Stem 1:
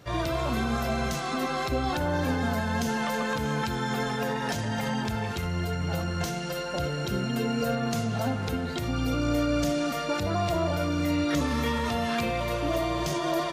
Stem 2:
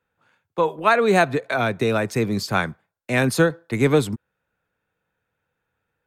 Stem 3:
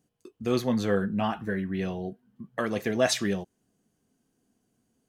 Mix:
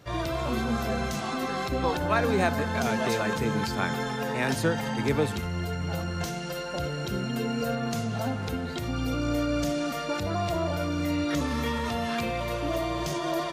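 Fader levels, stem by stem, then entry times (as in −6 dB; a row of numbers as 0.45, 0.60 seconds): −1.5, −9.0, −10.5 decibels; 0.00, 1.25, 0.00 seconds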